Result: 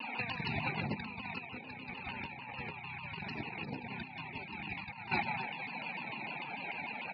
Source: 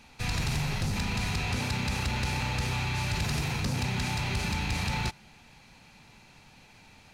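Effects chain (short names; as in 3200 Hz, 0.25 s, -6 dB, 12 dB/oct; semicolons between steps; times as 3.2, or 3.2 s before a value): formant sharpening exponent 1.5; HPF 340 Hz 12 dB/oct; tapped delay 45/84/97/354 ms -9.5/-16.5/-9.5/-18.5 dB; loudest bins only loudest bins 64; LPF 3400 Hz 24 dB/oct; negative-ratio compressor -47 dBFS, ratio -0.5; shaped vibrato saw down 6.7 Hz, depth 160 cents; gain +9 dB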